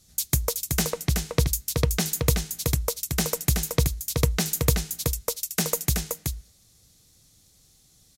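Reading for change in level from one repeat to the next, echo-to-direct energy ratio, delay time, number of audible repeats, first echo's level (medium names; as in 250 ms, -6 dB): no regular repeats, -5.0 dB, 376 ms, 1, -5.0 dB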